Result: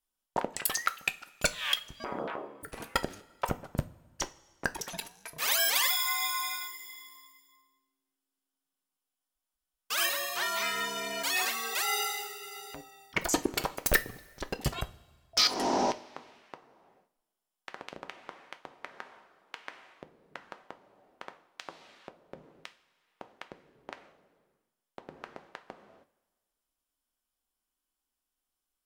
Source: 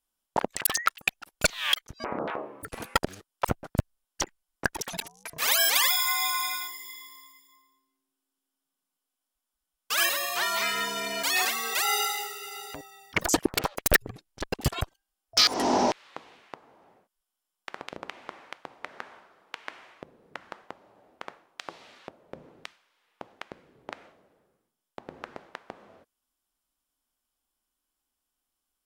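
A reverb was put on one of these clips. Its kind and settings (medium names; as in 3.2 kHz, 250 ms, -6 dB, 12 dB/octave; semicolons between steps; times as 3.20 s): two-slope reverb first 0.26 s, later 1.6 s, from -18 dB, DRR 9 dB; trim -4.5 dB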